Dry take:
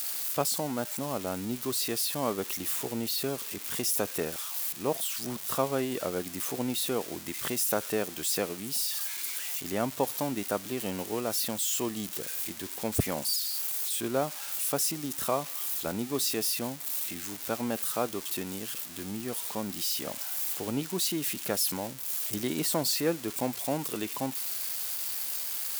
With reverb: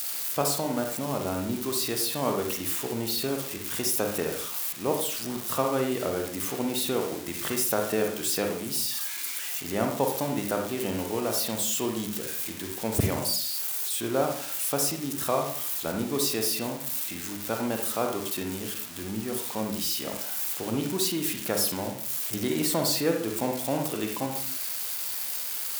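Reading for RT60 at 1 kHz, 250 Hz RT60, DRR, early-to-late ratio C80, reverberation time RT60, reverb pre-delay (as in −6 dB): 0.50 s, 0.60 s, 2.5 dB, 9.5 dB, 0.50 s, 36 ms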